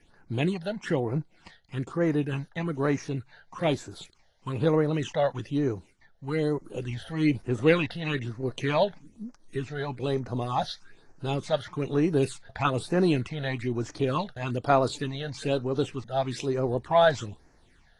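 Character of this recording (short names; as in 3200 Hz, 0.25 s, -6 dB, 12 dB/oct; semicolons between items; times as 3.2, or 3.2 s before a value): phasing stages 8, 1.1 Hz, lowest notch 310–3300 Hz; AAC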